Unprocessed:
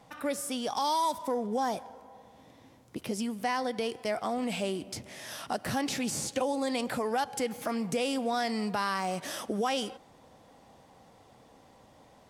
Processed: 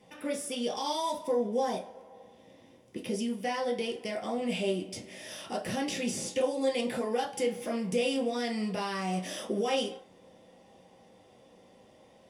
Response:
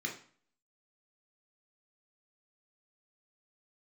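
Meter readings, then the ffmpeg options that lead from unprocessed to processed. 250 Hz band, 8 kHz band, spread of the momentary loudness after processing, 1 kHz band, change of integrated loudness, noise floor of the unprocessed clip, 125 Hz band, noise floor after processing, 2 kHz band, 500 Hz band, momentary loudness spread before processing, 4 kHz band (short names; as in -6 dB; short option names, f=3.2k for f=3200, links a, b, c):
0.0 dB, -2.0 dB, 9 LU, -4.0 dB, 0.0 dB, -58 dBFS, +1.0 dB, -59 dBFS, -2.0 dB, +2.0 dB, 10 LU, 0.0 dB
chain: -filter_complex "[1:a]atrim=start_sample=2205,asetrate=66150,aresample=44100[a];[0:a][a]afir=irnorm=-1:irlink=0"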